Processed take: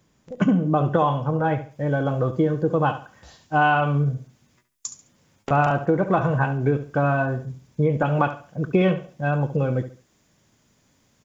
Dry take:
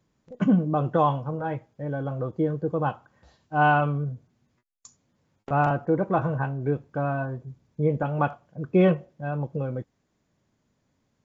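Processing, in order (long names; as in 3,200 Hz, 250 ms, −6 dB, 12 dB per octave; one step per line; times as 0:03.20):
high-shelf EQ 2,300 Hz +5.5 dB, from 0:01.71 +11 dB
downward compressor 5 to 1, threshold −23 dBFS, peak gain reduction 9 dB
parametric band 4,200 Hz −4.5 dB 0.21 octaves
repeating echo 70 ms, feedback 29%, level −12 dB
level +7 dB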